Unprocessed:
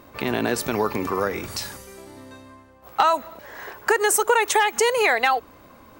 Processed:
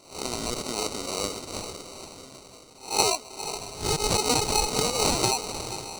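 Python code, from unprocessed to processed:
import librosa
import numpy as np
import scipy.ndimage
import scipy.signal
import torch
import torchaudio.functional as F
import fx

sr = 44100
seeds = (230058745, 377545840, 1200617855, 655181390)

p1 = fx.spec_swells(x, sr, rise_s=0.39)
p2 = fx.low_shelf(p1, sr, hz=220.0, db=-11.0)
p3 = p2 + fx.echo_diffused(p2, sr, ms=477, feedback_pct=48, wet_db=-10, dry=0)
p4 = fx.sample_hold(p3, sr, seeds[0], rate_hz=1700.0, jitter_pct=0)
p5 = fx.band_shelf(p4, sr, hz=6100.0, db=12.0, octaves=1.7)
y = F.gain(torch.from_numpy(p5), -8.0).numpy()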